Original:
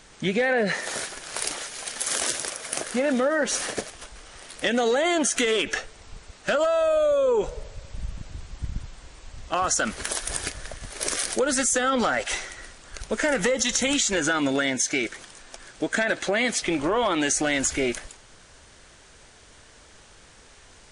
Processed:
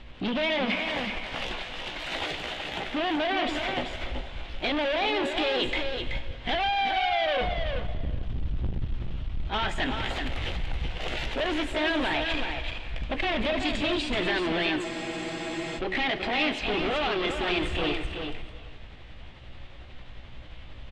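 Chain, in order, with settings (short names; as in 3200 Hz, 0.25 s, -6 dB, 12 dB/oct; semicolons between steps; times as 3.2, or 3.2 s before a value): delay-line pitch shifter +3.5 st; tilt -3 dB/oct; notch 450 Hz, Q 12; de-hum 93.77 Hz, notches 5; overloaded stage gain 27 dB; synth low-pass 3200 Hz, resonance Q 3.2; echo 0.379 s -6.5 dB; non-linear reverb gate 0.49 s flat, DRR 11.5 dB; spectral freeze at 14.86, 0.91 s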